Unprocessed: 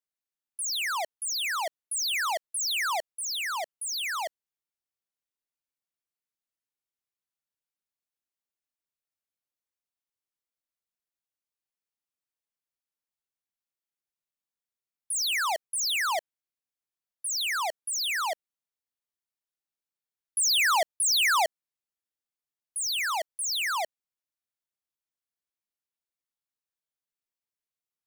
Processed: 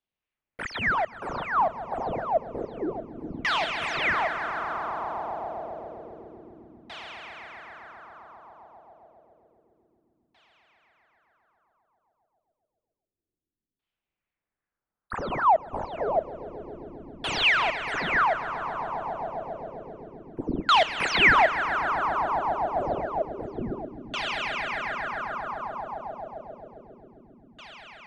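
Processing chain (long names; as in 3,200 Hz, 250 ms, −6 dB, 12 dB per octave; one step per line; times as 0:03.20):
low-shelf EQ 150 Hz +11.5 dB
in parallel at −5 dB: sample-and-hold swept by an LFO 15×, swing 160% 2.5 Hz
on the sum: echo that builds up and dies away 133 ms, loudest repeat 8, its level −15 dB
auto-filter low-pass saw down 0.29 Hz 260–3,300 Hz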